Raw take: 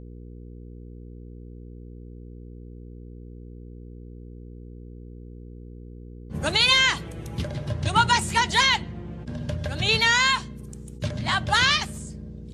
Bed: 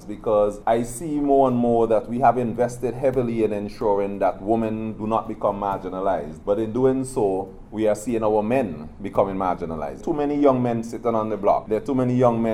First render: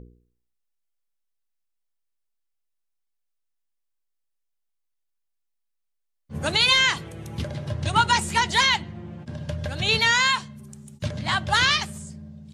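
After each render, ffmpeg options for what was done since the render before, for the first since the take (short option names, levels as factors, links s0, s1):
-af "bandreject=f=60:t=h:w=4,bandreject=f=120:t=h:w=4,bandreject=f=180:t=h:w=4,bandreject=f=240:t=h:w=4,bandreject=f=300:t=h:w=4,bandreject=f=360:t=h:w=4,bandreject=f=420:t=h:w=4,bandreject=f=480:t=h:w=4"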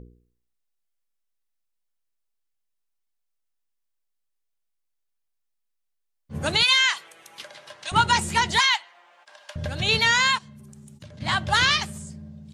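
-filter_complex "[0:a]asettb=1/sr,asplit=3[s0][s1][s2];[s0]atrim=end=6.634[s3];[s1]atrim=start=6.63:end=7.92,asetpts=PTS-STARTPTS,afade=t=in:d=0.004:c=qsin,afade=t=out:st=1.286:d=0.004:c=qsin,highpass=1000[s4];[s2]atrim=start=7.916[s5];[s3][s4]acrossfade=d=0.004:c1=hsin:c2=qsin[s6];[s6][s5]acrossfade=d=0.004:c1=qsin:c2=hsin,asettb=1/sr,asplit=3[s7][s8][s9];[s7]atrim=end=8.594[s10];[s8]atrim=start=8.59:end=9.56,asetpts=PTS-STARTPTS,afade=t=in:d=0.004:c=qsin,afade=t=out:st=0.966:d=0.004:c=qsin,highpass=f=790:w=0.5412,highpass=f=790:w=1.3066[s11];[s9]atrim=start=9.556[s12];[s10][s11]acrossfade=d=0.004:c1=hsin:c2=qsin[s13];[s13][s12]acrossfade=d=0.004:c1=qsin:c2=hsin,asplit=3[s14][s15][s16];[s14]afade=t=out:st=10.37:d=0.02[s17];[s15]acompressor=threshold=0.00794:ratio=5:attack=3.2:release=140:knee=1:detection=peak,afade=t=in:st=10.37:d=0.02,afade=t=out:st=11.2:d=0.02[s18];[s16]afade=t=in:st=11.2:d=0.02[s19];[s17][s18][s19]amix=inputs=3:normalize=0"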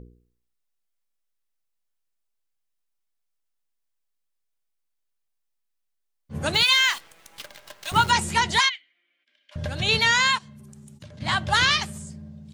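-filter_complex "[0:a]asettb=1/sr,asplit=3[s0][s1][s2];[s0]atrim=end=6.544[s3];[s1]atrim=start=6.54:end=8.1,asetpts=PTS-STARTPTS,afade=t=in:d=0.004:c=qsin,afade=t=out:st=1.556:d=0.004:c=qsin,acrusher=bits=7:dc=4:mix=0:aa=0.000001[s4];[s2]atrim=start=8.096[s5];[s3][s4]acrossfade=d=0.004:c1=hsin:c2=qsin[s6];[s6][s5]acrossfade=d=0.004:c1=qsin:c2=hsin,asplit=3[s7][s8][s9];[s7]afade=t=out:st=8.68:d=0.02[s10];[s8]asplit=3[s11][s12][s13];[s11]bandpass=f=270:t=q:w=8,volume=1[s14];[s12]bandpass=f=2290:t=q:w=8,volume=0.501[s15];[s13]bandpass=f=3010:t=q:w=8,volume=0.355[s16];[s14][s15][s16]amix=inputs=3:normalize=0,afade=t=in:st=8.68:d=0.02,afade=t=out:st=9.51:d=0.02[s17];[s9]afade=t=in:st=9.51:d=0.02[s18];[s10][s17][s18]amix=inputs=3:normalize=0"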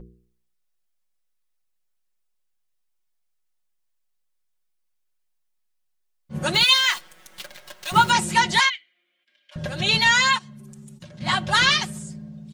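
-af "aecho=1:1:5.5:0.8"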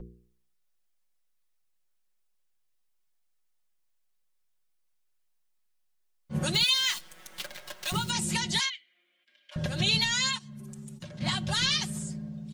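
-filter_complex "[0:a]alimiter=limit=0.266:level=0:latency=1:release=258,acrossover=split=300|3000[s0][s1][s2];[s1]acompressor=threshold=0.0141:ratio=4[s3];[s0][s3][s2]amix=inputs=3:normalize=0"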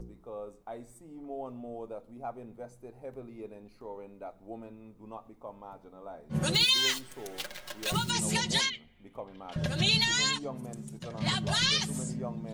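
-filter_complex "[1:a]volume=0.075[s0];[0:a][s0]amix=inputs=2:normalize=0"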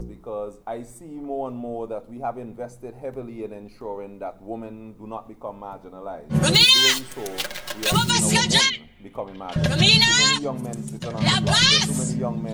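-af "volume=3.35"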